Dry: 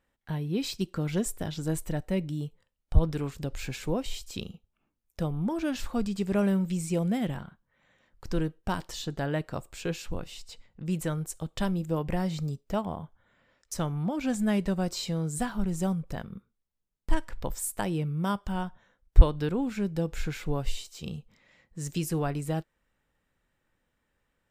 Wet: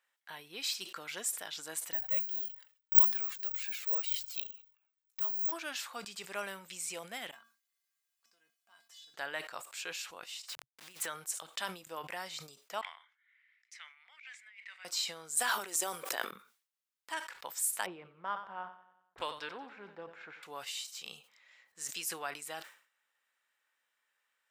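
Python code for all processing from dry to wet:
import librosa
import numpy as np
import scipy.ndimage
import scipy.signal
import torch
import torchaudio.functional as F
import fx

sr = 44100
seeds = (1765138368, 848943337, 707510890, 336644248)

y = fx.chain(x, sr, fx.median_filter(points=3),
    fx.resample_bad(factor=2, down='none', up='zero_stuff'),
    fx.comb_cascade(direction='falling', hz=1.8), at=(1.93, 5.52))
y = fx.chain(y, sr, fx.level_steps(step_db=21),
    fx.quant_dither(seeds[0], bits=12, dither='triangular'),
    fx.comb_fb(f0_hz=230.0, decay_s=0.29, harmonics='odd', damping=0.0, mix_pct=90), at=(7.31, 9.14))
y = fx.chain(y, sr, fx.delta_hold(step_db=-45.0),
    fx.peak_eq(hz=130.0, db=-9.5, octaves=0.22),
    fx.over_compress(threshold_db=-33.0, ratio=-0.5), at=(10.48, 11.06))
y = fx.chain(y, sr, fx.ladder_bandpass(hz=2200.0, resonance_pct=80),
    fx.over_compress(threshold_db=-52.0, ratio=-1.0), at=(12.81, 14.85))
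y = fx.chain(y, sr, fx.highpass_res(hz=340.0, q=2.1),
    fx.high_shelf(hz=5900.0, db=8.5),
    fx.sustainer(db_per_s=20.0), at=(15.37, 16.31))
y = fx.chain(y, sr, fx.env_lowpass(base_hz=540.0, full_db=-14.5),
    fx.echo_feedback(ms=92, feedback_pct=55, wet_db=-15.0),
    fx.doppler_dist(depth_ms=0.65), at=(17.86, 20.43))
y = scipy.signal.sosfilt(scipy.signal.butter(2, 1200.0, 'highpass', fs=sr, output='sos'), y)
y = fx.sustainer(y, sr, db_per_s=120.0)
y = F.gain(torch.from_numpy(y), 1.0).numpy()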